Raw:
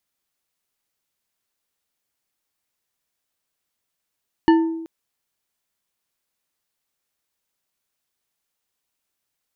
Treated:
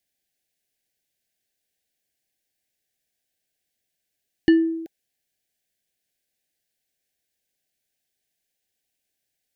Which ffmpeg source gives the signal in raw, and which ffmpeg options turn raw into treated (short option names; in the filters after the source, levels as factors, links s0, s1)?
-f lavfi -i "aevalsrc='0.355*pow(10,-3*t/0.97)*sin(2*PI*327*t)+0.168*pow(10,-3*t/0.477)*sin(2*PI*901.5*t)+0.0794*pow(10,-3*t/0.298)*sin(2*PI*1767.1*t)+0.0376*pow(10,-3*t/0.209)*sin(2*PI*2921.1*t)+0.0178*pow(10,-3*t/0.158)*sin(2*PI*4362.2*t)':d=0.38:s=44100"
-af "asuperstop=centerf=1100:order=20:qfactor=1.6"